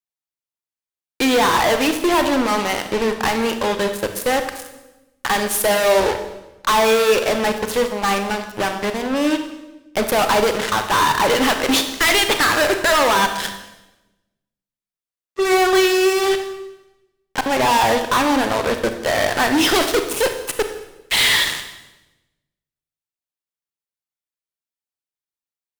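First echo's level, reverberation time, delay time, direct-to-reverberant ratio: no echo audible, 1.0 s, no echo audible, 6.5 dB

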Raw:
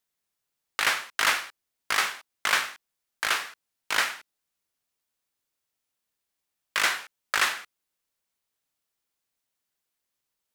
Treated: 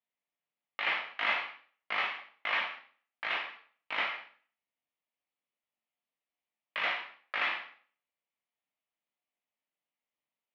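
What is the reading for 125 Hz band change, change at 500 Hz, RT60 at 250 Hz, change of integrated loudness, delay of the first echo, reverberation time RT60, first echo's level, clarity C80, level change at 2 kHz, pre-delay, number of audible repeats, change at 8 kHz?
can't be measured, −4.0 dB, 0.50 s, −7.0 dB, no echo audible, 0.45 s, no echo audible, 11.0 dB, −6.0 dB, 6 ms, no echo audible, below −35 dB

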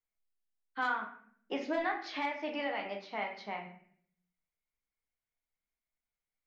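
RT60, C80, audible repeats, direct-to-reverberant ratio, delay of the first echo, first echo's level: 0.60 s, 11.5 dB, no echo audible, 1.0 dB, no echo audible, no echo audible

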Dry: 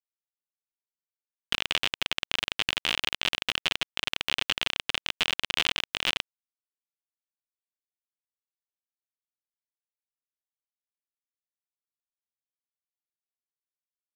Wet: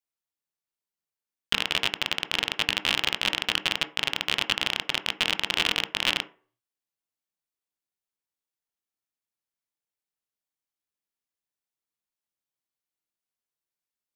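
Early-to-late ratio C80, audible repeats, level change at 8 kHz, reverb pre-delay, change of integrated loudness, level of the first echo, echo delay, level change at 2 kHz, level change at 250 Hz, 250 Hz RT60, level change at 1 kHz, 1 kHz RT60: 21.5 dB, no echo audible, +2.5 dB, 11 ms, +2.5 dB, no echo audible, no echo audible, +2.5 dB, +5.0 dB, 0.35 s, +3.5 dB, 0.40 s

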